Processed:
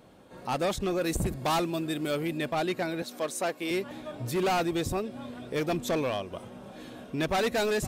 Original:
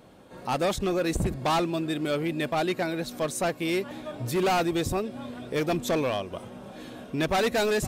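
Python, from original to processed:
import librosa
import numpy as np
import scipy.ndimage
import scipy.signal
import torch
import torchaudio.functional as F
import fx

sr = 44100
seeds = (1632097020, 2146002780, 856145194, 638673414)

y = fx.high_shelf(x, sr, hz=9000.0, db=10.0, at=(1.01, 2.38))
y = fx.highpass(y, sr, hz=270.0, slope=12, at=(3.02, 3.71))
y = F.gain(torch.from_numpy(y), -2.5).numpy()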